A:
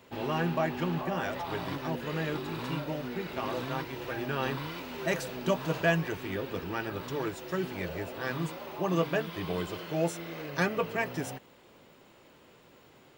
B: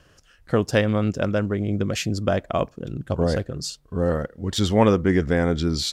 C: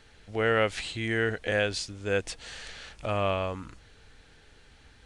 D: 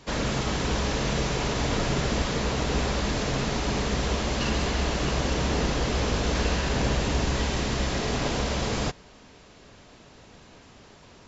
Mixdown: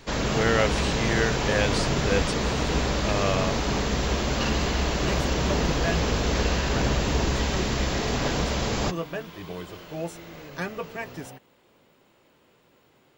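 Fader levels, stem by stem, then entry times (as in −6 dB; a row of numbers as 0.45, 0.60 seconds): −3.5 dB, muted, +1.0 dB, +1.0 dB; 0.00 s, muted, 0.00 s, 0.00 s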